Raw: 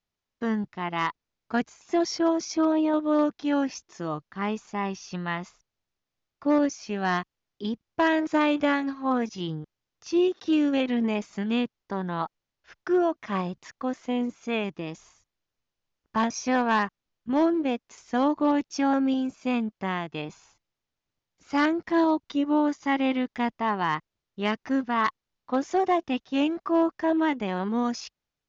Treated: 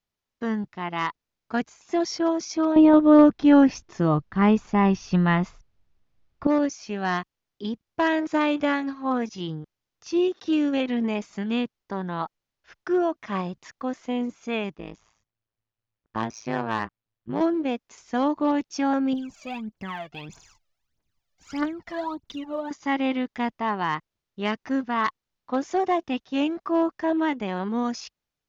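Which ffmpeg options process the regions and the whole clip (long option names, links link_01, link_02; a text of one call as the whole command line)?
ffmpeg -i in.wav -filter_complex "[0:a]asettb=1/sr,asplit=3[link_01][link_02][link_03];[link_01]atrim=end=2.764[link_04];[link_02]atrim=start=2.76:end=6.47,asetpts=PTS-STARTPTS,afade=type=in:duration=0.004:curve=qsin,afade=type=out:start_time=3.706:duration=0.004:curve=qsin,acontrast=74,aemphasis=mode=reproduction:type=bsi[link_05];[link_03]atrim=start=6.466[link_06];[link_04][link_05]acrossfade=duration=0.004:curve1=hsin:curve2=qsin[link_07];[link_07][link_06]acrossfade=duration=0.004:curve1=qsin:curve2=hsin,asettb=1/sr,asplit=3[link_08][link_09][link_10];[link_08]atrim=end=14.754[link_11];[link_09]atrim=start=14.75:end=17.41,asetpts=PTS-STARTPTS,afade=type=in:duration=0.004:curve=qsin,afade=type=out:start_time=2.656:duration=0.004:curve=qsin,adynamicsmooth=sensitivity=2:basefreq=5100,tremolo=f=110:d=0.974[link_12];[link_10]atrim=start=17.406[link_13];[link_11][link_12]acrossfade=duration=0.004:curve1=hsin:curve2=qsin[link_14];[link_14][link_13]acrossfade=duration=0.004:curve1=qsin:curve2=hsin,asettb=1/sr,asplit=3[link_15][link_16][link_17];[link_15]atrim=end=19.134[link_18];[link_16]atrim=start=19.13:end=22.71,asetpts=PTS-STARTPTS,afade=type=in:duration=0.004:curve=qsin,afade=type=out:start_time=3.576:duration=0.004:curve=qsin,aphaser=in_gain=1:out_gain=1:delay=1.8:decay=0.77:speed=1.6:type=triangular,acompressor=threshold=-43dB:ratio=1.5:attack=3.2:release=140:knee=1:detection=peak[link_19];[link_17]atrim=start=22.706[link_20];[link_18][link_19]acrossfade=duration=0.004:curve1=hsin:curve2=qsin[link_21];[link_21][link_20]acrossfade=duration=0.004:curve1=qsin:curve2=hsin" out.wav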